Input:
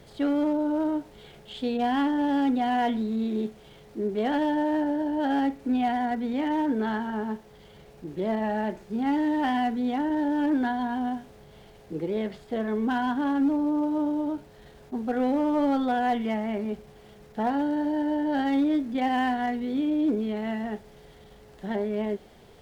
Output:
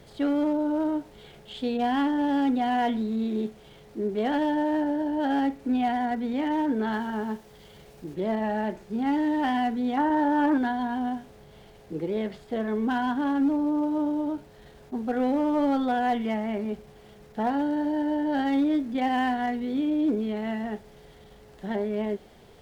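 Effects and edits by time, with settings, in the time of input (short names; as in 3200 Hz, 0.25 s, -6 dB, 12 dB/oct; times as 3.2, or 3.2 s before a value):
6.92–8.14 high shelf 3800 Hz +6.5 dB
9.97–10.58 bell 1100 Hz +11 dB 1.3 oct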